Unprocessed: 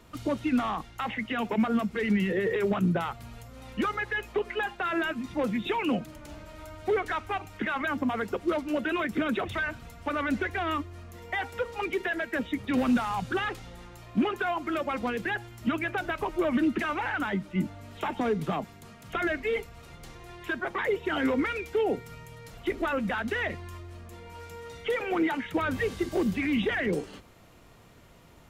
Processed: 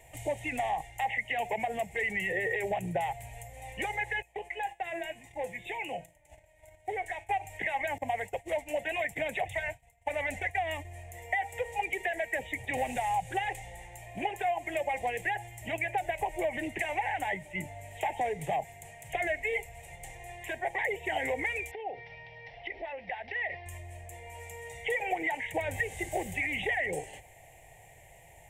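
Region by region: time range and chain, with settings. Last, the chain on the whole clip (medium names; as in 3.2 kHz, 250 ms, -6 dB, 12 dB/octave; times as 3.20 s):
4.22–7.29 s: gate -43 dBFS, range -12 dB + feedback comb 170 Hz, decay 0.34 s
7.98–10.85 s: expander -34 dBFS + peaking EQ 370 Hz -9.5 dB 0.33 oct
21.71–23.66 s: bass shelf 210 Hz -9.5 dB + compression 12:1, threshold -34 dBFS + careless resampling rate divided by 4×, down none, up filtered
whole clip: FFT filter 140 Hz 0 dB, 220 Hz -19 dB, 800 Hz +11 dB, 1.3 kHz -27 dB, 1.9 kHz +11 dB, 4.9 kHz -6 dB; compression, threshold -25 dBFS; resonant high shelf 6 kHz +10.5 dB, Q 3; trim -1.5 dB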